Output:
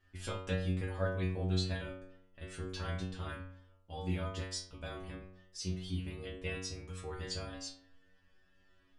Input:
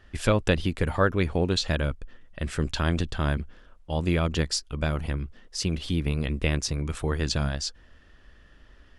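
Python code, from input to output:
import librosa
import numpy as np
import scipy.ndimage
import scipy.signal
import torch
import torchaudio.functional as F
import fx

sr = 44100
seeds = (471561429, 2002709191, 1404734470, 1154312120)

y = fx.stiff_resonator(x, sr, f0_hz=91.0, decay_s=0.82, stiffness=0.002)
y = F.gain(torch.from_numpy(y), 1.0).numpy()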